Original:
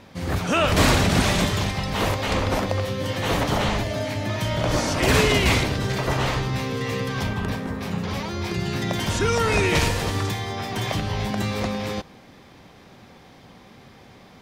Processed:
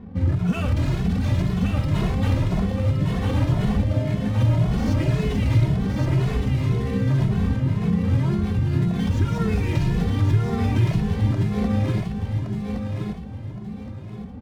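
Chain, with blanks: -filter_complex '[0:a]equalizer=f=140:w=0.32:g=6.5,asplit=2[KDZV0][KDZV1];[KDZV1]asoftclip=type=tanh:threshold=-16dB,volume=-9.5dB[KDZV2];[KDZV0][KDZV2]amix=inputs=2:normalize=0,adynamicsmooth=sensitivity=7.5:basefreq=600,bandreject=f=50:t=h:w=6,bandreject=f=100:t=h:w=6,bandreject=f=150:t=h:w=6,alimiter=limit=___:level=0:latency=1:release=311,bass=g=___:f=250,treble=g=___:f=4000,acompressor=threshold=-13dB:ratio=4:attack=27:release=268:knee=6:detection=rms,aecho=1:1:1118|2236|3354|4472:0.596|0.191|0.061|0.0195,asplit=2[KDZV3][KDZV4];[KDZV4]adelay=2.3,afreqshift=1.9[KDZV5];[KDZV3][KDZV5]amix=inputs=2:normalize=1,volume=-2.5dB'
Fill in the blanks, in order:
-13.5dB, 12, -2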